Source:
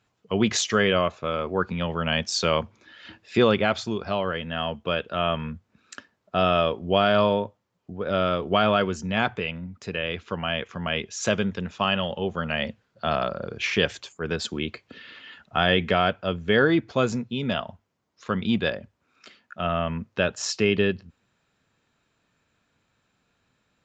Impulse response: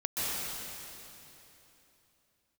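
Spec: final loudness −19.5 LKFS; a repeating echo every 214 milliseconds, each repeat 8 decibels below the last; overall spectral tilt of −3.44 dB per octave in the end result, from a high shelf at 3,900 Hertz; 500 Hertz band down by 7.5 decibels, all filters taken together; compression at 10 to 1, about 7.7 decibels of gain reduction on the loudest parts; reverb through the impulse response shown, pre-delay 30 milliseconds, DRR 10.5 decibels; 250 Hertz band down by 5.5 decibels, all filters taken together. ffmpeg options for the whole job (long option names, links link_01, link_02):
-filter_complex "[0:a]equalizer=frequency=250:width_type=o:gain=-5.5,equalizer=frequency=500:width_type=o:gain=-8.5,highshelf=frequency=3900:gain=3.5,acompressor=threshold=-26dB:ratio=10,aecho=1:1:214|428|642|856|1070:0.398|0.159|0.0637|0.0255|0.0102,asplit=2[link_01][link_02];[1:a]atrim=start_sample=2205,adelay=30[link_03];[link_02][link_03]afir=irnorm=-1:irlink=0,volume=-19dB[link_04];[link_01][link_04]amix=inputs=2:normalize=0,volume=12dB"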